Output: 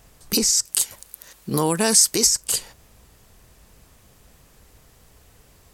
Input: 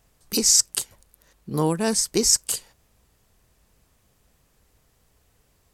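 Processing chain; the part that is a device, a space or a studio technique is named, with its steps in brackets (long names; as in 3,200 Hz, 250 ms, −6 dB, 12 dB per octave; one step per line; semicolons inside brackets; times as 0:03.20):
loud club master (downward compressor 2.5 to 1, threshold −23 dBFS, peak gain reduction 7.5 dB; hard clipping −8 dBFS, distortion −41 dB; boost into a limiter +19 dB)
0:00.65–0:02.27: spectral tilt +2 dB per octave
level −8.5 dB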